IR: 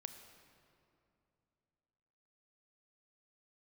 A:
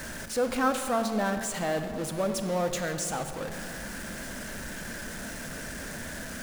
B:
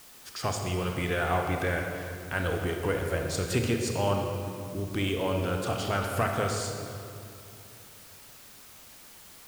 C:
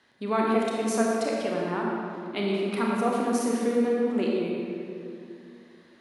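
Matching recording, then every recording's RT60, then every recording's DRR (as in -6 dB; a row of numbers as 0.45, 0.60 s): A; 2.7, 2.7, 2.6 s; 7.5, 2.5, -3.0 dB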